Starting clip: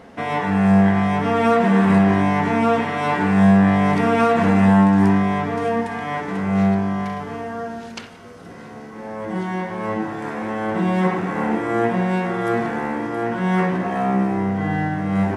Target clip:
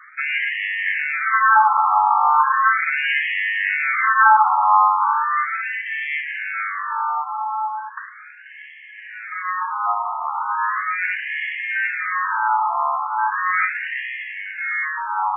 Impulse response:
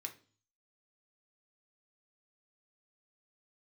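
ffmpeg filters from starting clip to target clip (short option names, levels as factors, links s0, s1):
-af "highpass=f=580:t=q:w=0.5412,highpass=f=580:t=q:w=1.307,lowpass=f=3200:t=q:w=0.5176,lowpass=f=3200:t=q:w=0.7071,lowpass=f=3200:t=q:w=1.932,afreqshift=170,afftfilt=real='re*between(b*sr/1024,950*pow(2400/950,0.5+0.5*sin(2*PI*0.37*pts/sr))/1.41,950*pow(2400/950,0.5+0.5*sin(2*PI*0.37*pts/sr))*1.41)':imag='im*between(b*sr/1024,950*pow(2400/950,0.5+0.5*sin(2*PI*0.37*pts/sr))/1.41,950*pow(2400/950,0.5+0.5*sin(2*PI*0.37*pts/sr))*1.41)':win_size=1024:overlap=0.75,volume=2.82"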